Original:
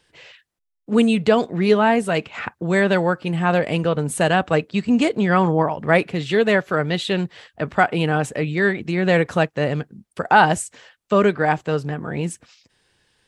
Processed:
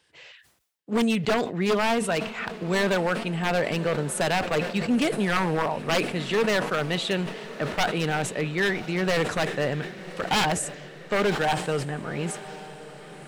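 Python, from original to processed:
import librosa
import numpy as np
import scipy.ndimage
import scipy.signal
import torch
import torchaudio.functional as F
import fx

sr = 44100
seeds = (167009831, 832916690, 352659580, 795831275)

y = scipy.signal.sosfilt(scipy.signal.butter(4, 47.0, 'highpass', fs=sr, output='sos'), x)
y = fx.low_shelf(y, sr, hz=450.0, db=-4.5)
y = 10.0 ** (-14.0 / 20.0) * (np.abs((y / 10.0 ** (-14.0 / 20.0) + 3.0) % 4.0 - 2.0) - 1.0)
y = fx.echo_diffused(y, sr, ms=1068, feedback_pct=54, wet_db=-15.5)
y = fx.sustainer(y, sr, db_per_s=88.0)
y = F.gain(torch.from_numpy(y), -2.5).numpy()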